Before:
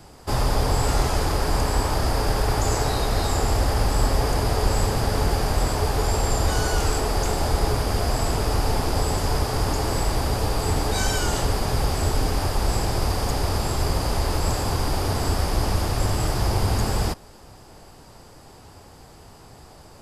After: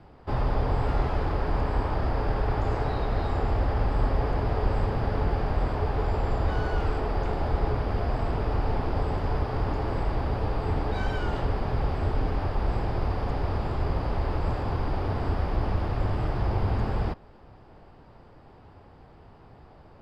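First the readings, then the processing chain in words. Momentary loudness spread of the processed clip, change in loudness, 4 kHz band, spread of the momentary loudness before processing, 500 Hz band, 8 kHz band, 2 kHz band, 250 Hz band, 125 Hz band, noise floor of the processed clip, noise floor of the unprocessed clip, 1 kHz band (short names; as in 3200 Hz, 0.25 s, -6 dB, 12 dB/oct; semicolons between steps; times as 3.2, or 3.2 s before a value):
2 LU, -5.0 dB, -16.0 dB, 2 LU, -4.5 dB, under -30 dB, -7.0 dB, -4.0 dB, -3.5 dB, -52 dBFS, -47 dBFS, -5.0 dB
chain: air absorption 390 m; gain -3.5 dB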